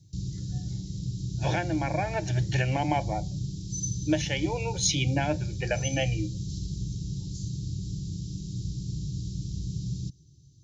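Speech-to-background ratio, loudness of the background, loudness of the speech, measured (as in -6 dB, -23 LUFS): 5.0 dB, -34.5 LUFS, -29.5 LUFS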